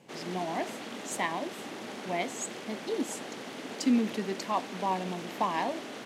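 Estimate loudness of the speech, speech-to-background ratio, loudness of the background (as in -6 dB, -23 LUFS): -33.5 LUFS, 7.0 dB, -40.5 LUFS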